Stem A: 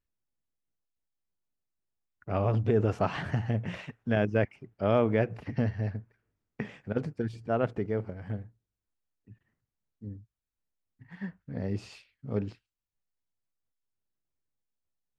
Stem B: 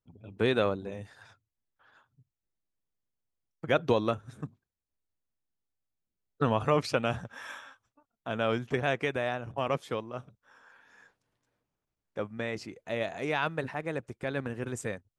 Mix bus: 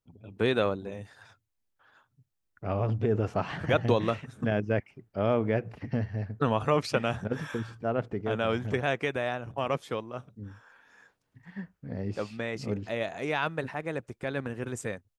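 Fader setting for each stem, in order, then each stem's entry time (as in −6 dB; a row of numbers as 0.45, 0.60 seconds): −1.5, +0.5 decibels; 0.35, 0.00 seconds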